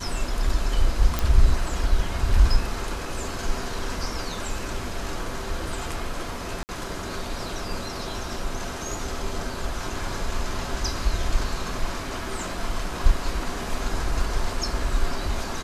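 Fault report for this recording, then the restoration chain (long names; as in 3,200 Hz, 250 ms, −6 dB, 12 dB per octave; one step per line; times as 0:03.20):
0:01.19: click
0:06.63–0:06.69: drop-out 59 ms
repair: click removal
repair the gap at 0:06.63, 59 ms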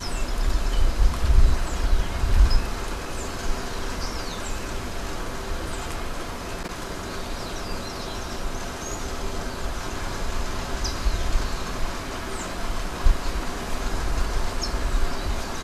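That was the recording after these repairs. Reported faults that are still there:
none of them is left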